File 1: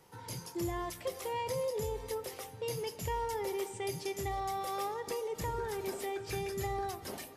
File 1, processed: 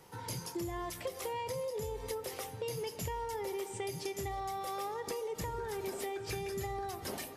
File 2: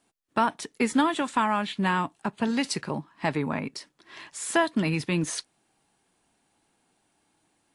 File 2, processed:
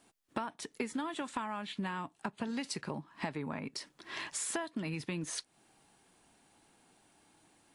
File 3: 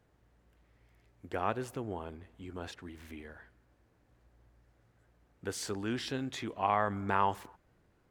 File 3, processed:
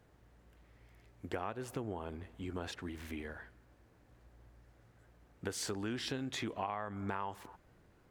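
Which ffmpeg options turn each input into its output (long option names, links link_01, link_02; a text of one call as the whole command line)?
ffmpeg -i in.wav -af "acompressor=threshold=-39dB:ratio=8,volume=4dB" out.wav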